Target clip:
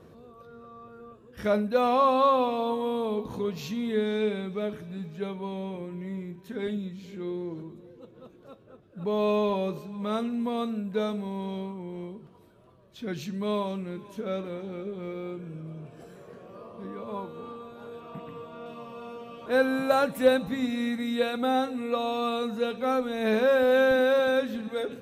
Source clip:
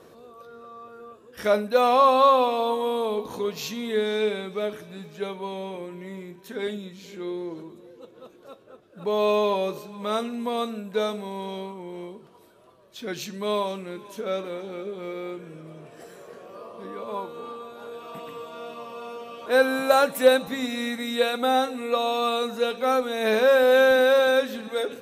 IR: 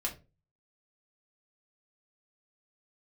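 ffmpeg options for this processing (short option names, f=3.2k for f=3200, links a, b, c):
-filter_complex "[0:a]asettb=1/sr,asplit=3[a][b][c];[a]atrim=end=15.144[d];[b]atrim=start=15.14:end=16.16,asetpts=PTS-STARTPTS,afade=t=in:d=0.004:c=qsin,afade=t=out:st=1.016:d=0.004:c=qsin,bandreject=f=1.9k:w=6.7[e];[c]atrim=start=16.156[f];[d][e]acrossfade=d=0.004:c1=hsin:c2=qsin[g];[g][f]acrossfade=d=0.004:c1=qsin:c2=hsin,asettb=1/sr,asplit=3[h][i][j];[h]atrim=end=18.004[k];[i]atrim=start=18:end=18.66,asetpts=PTS-STARTPTS,afade=t=in:d=0.004:c=qsin,afade=t=out:st=0.656:d=0.004:c=qsin,acrossover=split=2900[l][m];[m]acompressor=threshold=-58dB:ratio=4:attack=1:release=60[n];[l][n]amix=inputs=2:normalize=0[o];[j]atrim=start=18.656[p];[k][o]acrossfade=d=0.004:c1=hsin:c2=qsin[q];[q][p]acrossfade=d=0.004:c1=qsin:c2=hsin,bass=f=250:g=13,treble=f=4k:g=-5,volume=-5dB"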